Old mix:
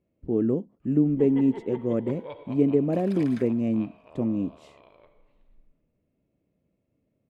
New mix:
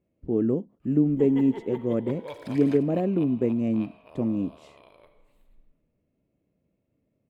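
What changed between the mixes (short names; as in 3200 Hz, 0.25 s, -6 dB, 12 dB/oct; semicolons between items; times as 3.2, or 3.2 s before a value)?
first sound: remove air absorption 190 m; second sound: entry -0.65 s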